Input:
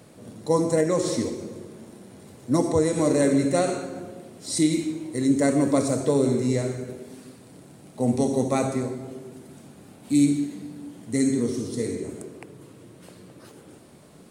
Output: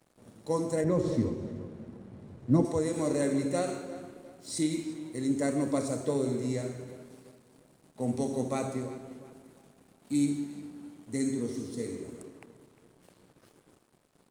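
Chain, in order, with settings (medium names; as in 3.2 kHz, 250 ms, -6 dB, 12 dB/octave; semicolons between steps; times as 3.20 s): 0.84–2.65 s: RIAA curve playback; crossover distortion -49 dBFS; on a send: tape echo 351 ms, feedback 38%, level -15 dB, low-pass 3.9 kHz; on the sum: trim -8 dB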